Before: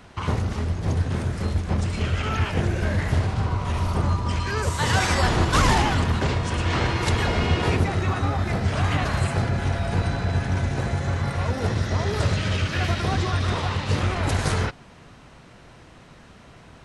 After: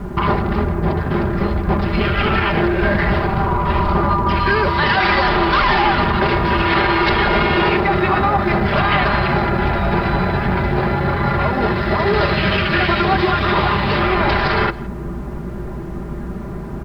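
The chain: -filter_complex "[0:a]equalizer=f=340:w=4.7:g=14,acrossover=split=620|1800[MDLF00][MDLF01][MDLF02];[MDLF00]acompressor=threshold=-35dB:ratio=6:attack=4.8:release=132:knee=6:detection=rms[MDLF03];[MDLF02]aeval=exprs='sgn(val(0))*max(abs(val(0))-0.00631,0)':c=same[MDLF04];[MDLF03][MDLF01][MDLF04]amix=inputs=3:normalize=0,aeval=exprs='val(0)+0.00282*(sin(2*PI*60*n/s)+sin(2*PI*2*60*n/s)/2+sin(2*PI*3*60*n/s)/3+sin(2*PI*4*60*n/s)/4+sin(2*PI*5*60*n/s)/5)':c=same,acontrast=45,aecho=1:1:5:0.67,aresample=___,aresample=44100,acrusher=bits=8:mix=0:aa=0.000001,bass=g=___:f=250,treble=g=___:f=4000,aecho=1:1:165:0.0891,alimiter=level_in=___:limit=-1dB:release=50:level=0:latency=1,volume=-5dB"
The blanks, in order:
11025, 8, -8, 12dB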